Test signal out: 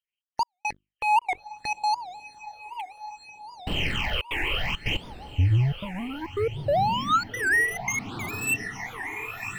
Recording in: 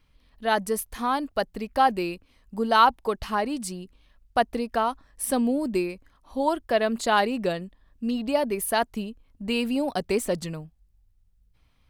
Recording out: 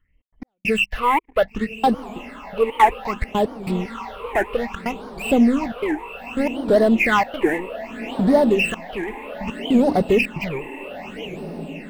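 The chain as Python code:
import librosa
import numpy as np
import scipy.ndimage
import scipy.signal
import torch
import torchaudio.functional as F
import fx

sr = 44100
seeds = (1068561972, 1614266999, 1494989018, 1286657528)

p1 = fx.freq_compress(x, sr, knee_hz=1700.0, ratio=4.0)
p2 = fx.high_shelf(p1, sr, hz=2300.0, db=-3.5)
p3 = fx.hum_notches(p2, sr, base_hz=50, count=7)
p4 = fx.leveller(p3, sr, passes=3)
p5 = 10.0 ** (-21.0 / 20.0) * (np.abs((p4 / 10.0 ** (-21.0 / 20.0) + 3.0) % 4.0 - 2.0) - 1.0)
p6 = p4 + (p5 * 10.0 ** (-12.0 / 20.0))
p7 = fx.step_gate(p6, sr, bpm=139, pattern='xx.x..xxxxx.xx', floor_db=-60.0, edge_ms=4.5)
p8 = p7 + fx.echo_diffused(p7, sr, ms=1124, feedback_pct=66, wet_db=-13.5, dry=0)
p9 = fx.phaser_stages(p8, sr, stages=8, low_hz=180.0, high_hz=2400.0, hz=0.63, feedback_pct=40)
y = fx.record_warp(p9, sr, rpm=78.0, depth_cents=250.0)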